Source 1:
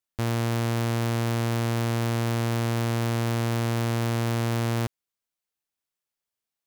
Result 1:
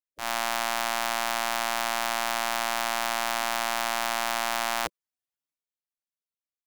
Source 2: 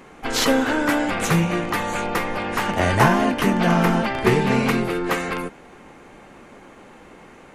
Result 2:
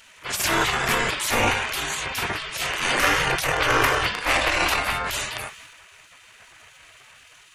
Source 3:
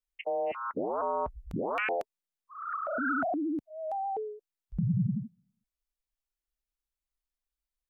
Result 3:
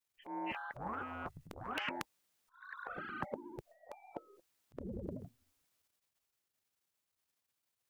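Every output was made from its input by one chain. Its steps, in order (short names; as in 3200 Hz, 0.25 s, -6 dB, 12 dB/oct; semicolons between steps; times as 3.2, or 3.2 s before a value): transient shaper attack -10 dB, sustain +7 dB; spectral gate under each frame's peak -15 dB weak; gain +7 dB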